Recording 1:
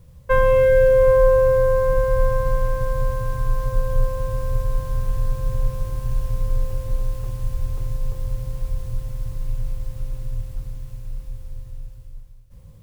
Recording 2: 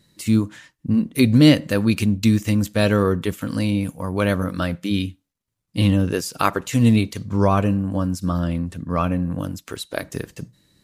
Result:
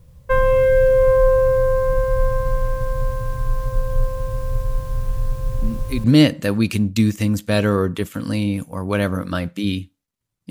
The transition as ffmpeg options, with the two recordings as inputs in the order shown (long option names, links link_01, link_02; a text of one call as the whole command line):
ffmpeg -i cue0.wav -i cue1.wav -filter_complex "[1:a]asplit=2[link_01][link_02];[0:a]apad=whole_dur=10.5,atrim=end=10.5,atrim=end=6.042[link_03];[link_02]atrim=start=1.308:end=5.77[link_04];[link_01]atrim=start=0.77:end=1.31,asetpts=PTS-STARTPTS,volume=-9.5dB,afade=type=in:duration=0.004:curve=hsin,afade=type=out:start_time=0.536:duration=0.004:curve=hsin,adelay=5500[link_05];[link_03][link_04]acrossfade=duration=0.004:curve1=hsin:curve2=hsin[link_06];[link_06][link_05]amix=inputs=2:normalize=0" out.wav